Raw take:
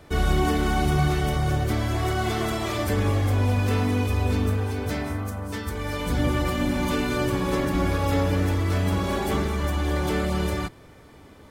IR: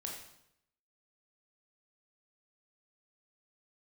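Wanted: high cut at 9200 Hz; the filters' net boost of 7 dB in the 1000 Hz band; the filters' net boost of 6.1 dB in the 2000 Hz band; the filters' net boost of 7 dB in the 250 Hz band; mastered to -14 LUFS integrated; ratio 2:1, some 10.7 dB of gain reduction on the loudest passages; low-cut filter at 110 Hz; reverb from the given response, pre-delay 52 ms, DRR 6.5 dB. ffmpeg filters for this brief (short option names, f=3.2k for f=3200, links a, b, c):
-filter_complex "[0:a]highpass=110,lowpass=9.2k,equalizer=f=250:t=o:g=8.5,equalizer=f=1k:t=o:g=7.5,equalizer=f=2k:t=o:g=5,acompressor=threshold=-35dB:ratio=2,asplit=2[a][b];[1:a]atrim=start_sample=2205,adelay=52[c];[b][c]afir=irnorm=-1:irlink=0,volume=-5.5dB[d];[a][d]amix=inputs=2:normalize=0,volume=15.5dB"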